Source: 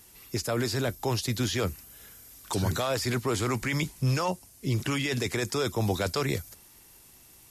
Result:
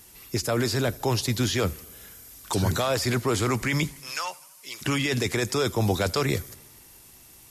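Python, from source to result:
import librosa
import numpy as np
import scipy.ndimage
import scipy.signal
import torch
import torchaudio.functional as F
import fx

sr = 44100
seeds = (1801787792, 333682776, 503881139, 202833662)

y = fx.highpass(x, sr, hz=1200.0, slope=12, at=(3.99, 4.81), fade=0.02)
y = fx.echo_warbled(y, sr, ms=82, feedback_pct=63, rate_hz=2.8, cents=92, wet_db=-24.0)
y = y * 10.0 ** (3.5 / 20.0)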